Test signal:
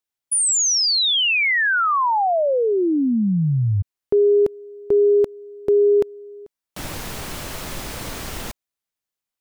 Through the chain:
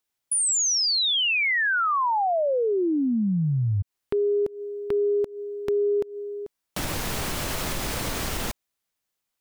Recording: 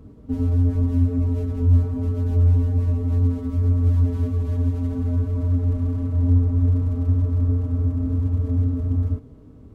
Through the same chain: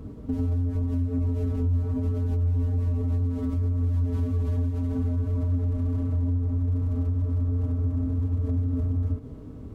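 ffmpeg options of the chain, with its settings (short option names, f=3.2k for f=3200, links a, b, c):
-af "acompressor=threshold=-27dB:ratio=6:attack=1.4:release=172:knee=1:detection=rms,volume=5dB"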